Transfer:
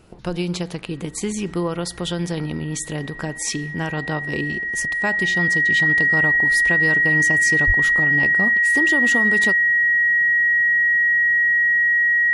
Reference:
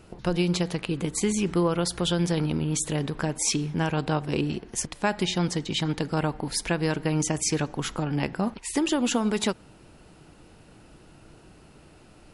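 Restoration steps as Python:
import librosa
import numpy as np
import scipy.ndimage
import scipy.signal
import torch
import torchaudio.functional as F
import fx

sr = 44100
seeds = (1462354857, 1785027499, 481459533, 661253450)

y = fx.notch(x, sr, hz=1900.0, q=30.0)
y = fx.highpass(y, sr, hz=140.0, slope=24, at=(7.66, 7.78), fade=0.02)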